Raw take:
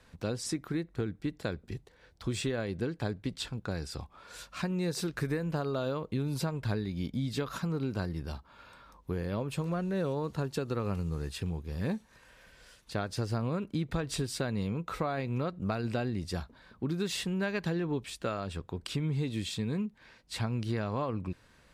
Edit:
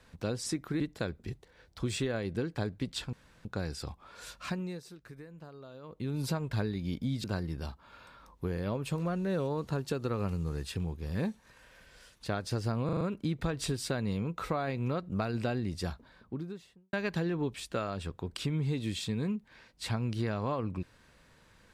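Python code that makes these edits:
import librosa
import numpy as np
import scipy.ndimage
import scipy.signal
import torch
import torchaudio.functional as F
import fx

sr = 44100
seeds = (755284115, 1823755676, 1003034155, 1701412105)

y = fx.studio_fade_out(x, sr, start_s=16.4, length_s=1.03)
y = fx.edit(y, sr, fx.cut(start_s=0.8, length_s=0.44),
    fx.insert_room_tone(at_s=3.57, length_s=0.32),
    fx.fade_down_up(start_s=4.56, length_s=1.77, db=-16.5, fade_s=0.4),
    fx.cut(start_s=7.36, length_s=0.54),
    fx.stutter(start_s=13.51, slice_s=0.04, count=5), tone=tone)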